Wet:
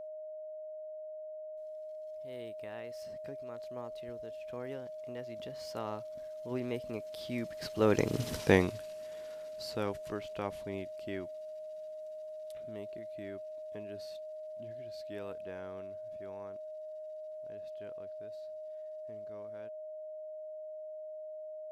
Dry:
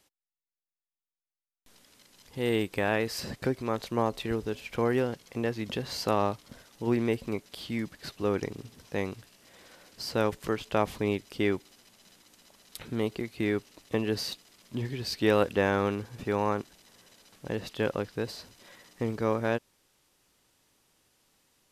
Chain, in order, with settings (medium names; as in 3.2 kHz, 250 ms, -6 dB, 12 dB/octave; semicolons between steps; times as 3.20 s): Doppler pass-by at 8.31 s, 18 m/s, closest 1.9 m; whistle 620 Hz -56 dBFS; trim +14.5 dB